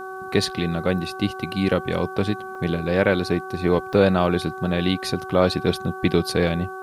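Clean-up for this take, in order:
hum removal 378.1 Hz, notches 4
repair the gap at 0:02.55/0:03.93, 3.3 ms
downward expander −26 dBFS, range −21 dB

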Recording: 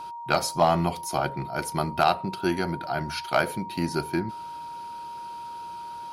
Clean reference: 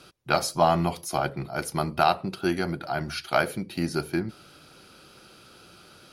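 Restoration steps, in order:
clipped peaks rebuilt −10 dBFS
notch filter 940 Hz, Q 30

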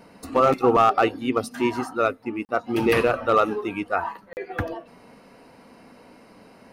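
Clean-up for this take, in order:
clipped peaks rebuilt −10 dBFS
repair the gap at 0:02.45/0:04.33, 39 ms

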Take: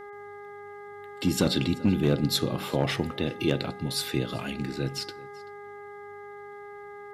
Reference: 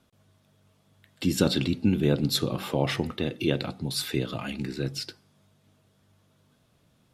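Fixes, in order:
clipped peaks rebuilt −14 dBFS
hum removal 409 Hz, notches 5
echo removal 385 ms −22.5 dB

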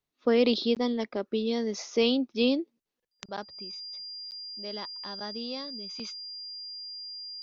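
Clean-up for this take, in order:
notch filter 4,800 Hz, Q 30
repair the gap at 0:00.75/0:04.31, 9.1 ms

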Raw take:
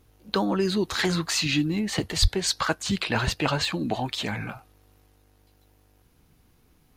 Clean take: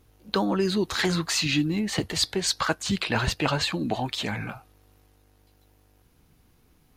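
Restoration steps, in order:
0:02.21–0:02.33: high-pass filter 140 Hz 24 dB per octave
repair the gap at 0:01.31/0:03.65/0:04.28/0:04.59, 2 ms

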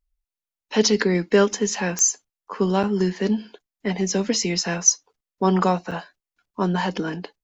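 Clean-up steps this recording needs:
click removal
repair the gap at 0:00.61/0:02.83/0:05.13/0:05.91, 6 ms

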